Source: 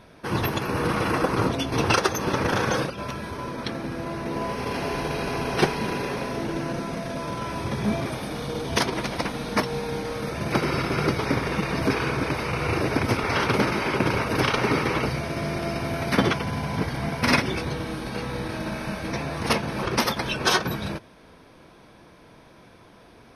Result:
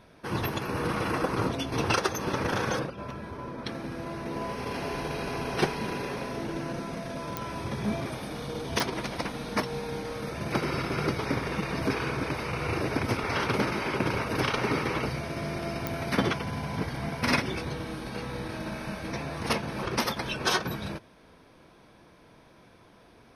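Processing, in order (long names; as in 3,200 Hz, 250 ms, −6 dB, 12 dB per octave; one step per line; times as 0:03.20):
0:02.79–0:03.66: high-shelf EQ 2,600 Hz −10.5 dB
digital clicks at 0:07.37/0:08.80/0:15.87, −9 dBFS
level −5 dB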